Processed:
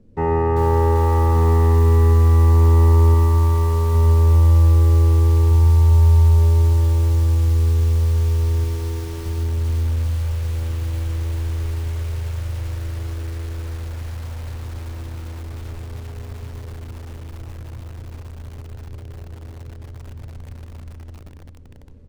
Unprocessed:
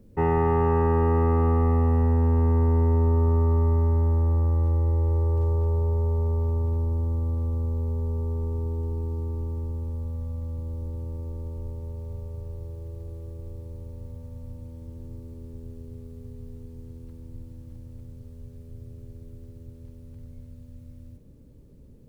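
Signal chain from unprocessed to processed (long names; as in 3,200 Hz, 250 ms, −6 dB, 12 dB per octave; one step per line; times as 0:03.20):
0:03.14–0:03.95: spectral tilt +1.5 dB per octave
0:05.51–0:06.38: comb filter 1.2 ms, depth 36%
0:08.64–0:09.26: high-pass filter 200 Hz 6 dB per octave
in parallel at −12 dB: bit reduction 7 bits
on the sum: high-frequency loss of the air 62 metres
single-tap delay 1,181 ms −9.5 dB
on a send at −5 dB: convolution reverb RT60 0.90 s, pre-delay 5 ms
on the sum: feedback echo at a low word length 392 ms, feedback 80%, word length 6 bits, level −6 dB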